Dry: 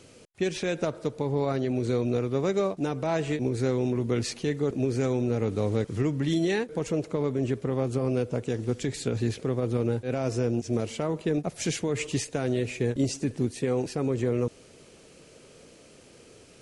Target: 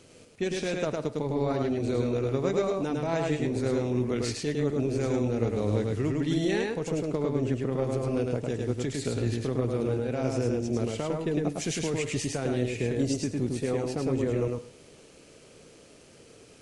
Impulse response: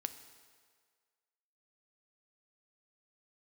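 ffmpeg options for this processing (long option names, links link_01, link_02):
-filter_complex "[0:a]tremolo=f=160:d=0.333,asplit=2[link_01][link_02];[1:a]atrim=start_sample=2205,atrim=end_sample=6174,adelay=105[link_03];[link_02][link_03]afir=irnorm=-1:irlink=0,volume=-1dB[link_04];[link_01][link_04]amix=inputs=2:normalize=0,volume=-1dB"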